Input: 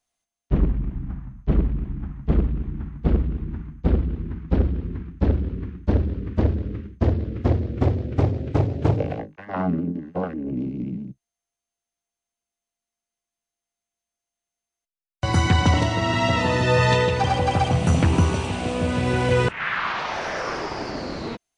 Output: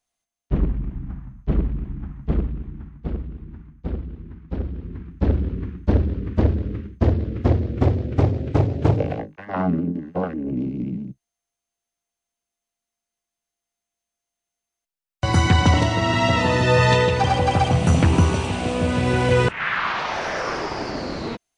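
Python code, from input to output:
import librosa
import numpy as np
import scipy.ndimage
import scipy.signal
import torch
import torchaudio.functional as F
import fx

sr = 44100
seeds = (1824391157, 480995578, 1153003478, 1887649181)

y = fx.gain(x, sr, db=fx.line((2.22, -1.0), (3.14, -8.0), (4.52, -8.0), (5.41, 2.0)))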